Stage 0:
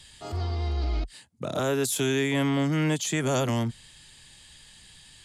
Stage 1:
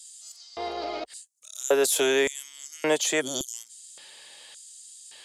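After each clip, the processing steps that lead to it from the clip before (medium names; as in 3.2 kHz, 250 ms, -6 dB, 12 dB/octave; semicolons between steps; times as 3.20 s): LFO high-pass square 0.88 Hz 530–6900 Hz; time-frequency box 3.21–3.54 s, 380–3000 Hz -22 dB; trim +4 dB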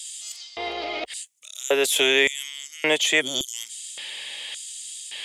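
high-order bell 2.6 kHz +10 dB 1.1 oct; reverse; upward compressor, threshold -26 dBFS; reverse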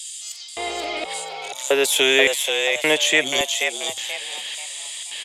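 frequency-shifting echo 483 ms, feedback 35%, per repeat +96 Hz, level -5 dB; trim +2.5 dB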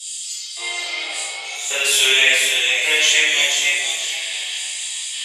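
band-pass filter 5.5 kHz, Q 0.69; reverberation RT60 1.4 s, pre-delay 3 ms, DRR -13.5 dB; trim -4 dB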